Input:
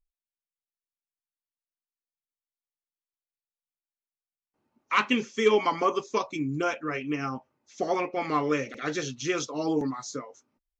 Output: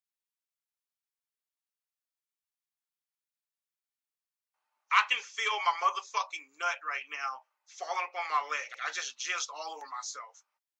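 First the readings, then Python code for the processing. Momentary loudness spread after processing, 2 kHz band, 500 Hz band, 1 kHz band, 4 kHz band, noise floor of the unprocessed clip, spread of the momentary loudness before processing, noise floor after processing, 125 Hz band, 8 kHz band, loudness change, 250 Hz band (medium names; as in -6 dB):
13 LU, 0.0 dB, -17.5 dB, -1.0 dB, 0.0 dB, under -85 dBFS, 11 LU, under -85 dBFS, under -40 dB, no reading, -4.0 dB, under -30 dB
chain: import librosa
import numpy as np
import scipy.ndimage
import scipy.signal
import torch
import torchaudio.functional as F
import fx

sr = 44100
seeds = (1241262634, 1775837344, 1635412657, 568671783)

y = scipy.signal.sosfilt(scipy.signal.butter(4, 830.0, 'highpass', fs=sr, output='sos'), x)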